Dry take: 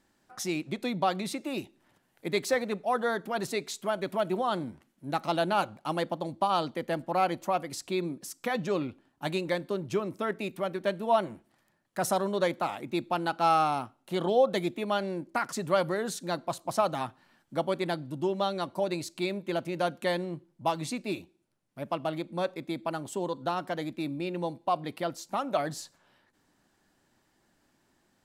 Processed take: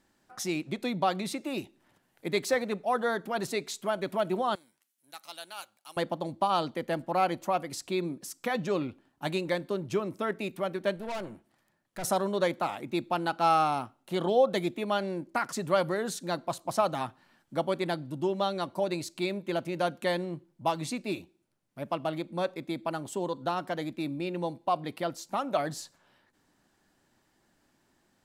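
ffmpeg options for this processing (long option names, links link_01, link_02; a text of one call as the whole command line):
ffmpeg -i in.wav -filter_complex "[0:a]asettb=1/sr,asplit=3[link_01][link_02][link_03];[link_01]atrim=end=4.554[link_04];[link_02]atrim=start=4.55:end=5.97,asetpts=PTS-STARTPTS,afade=type=in:duration=0.004:curve=qsin,afade=type=out:start_time=1.416:duration=0.004:curve=qsin,aderivative[link_05];[link_03]atrim=start=5.966[link_06];[link_04][link_05]acrossfade=duration=0.004:curve1=hsin:curve2=qsin[link_07];[link_07][link_06]acrossfade=duration=0.004:curve1=qsin:curve2=hsin,asettb=1/sr,asplit=3[link_08][link_09][link_10];[link_08]atrim=end=10.964[link_11];[link_09]atrim=start=10.96:end=12.04,asetpts=PTS-STARTPTS,afade=type=in:duration=0.004:curve=qsin,afade=type=out:start_time=1.076:duration=0.004:curve=qsin,aeval=exprs='(tanh(44.7*val(0)+0.45)-tanh(0.45))/44.7':channel_layout=same[link_12];[link_10]atrim=start=12.036[link_13];[link_11][link_12]acrossfade=duration=0.004:curve1=hsin:curve2=qsin[link_14];[link_14][link_13]acrossfade=duration=0.004:curve1=qsin:curve2=hsin" out.wav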